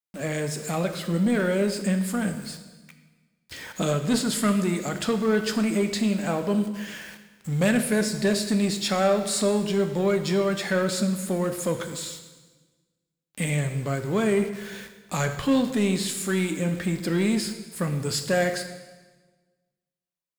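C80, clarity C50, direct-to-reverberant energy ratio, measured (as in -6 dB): 11.0 dB, 9.5 dB, 7.0 dB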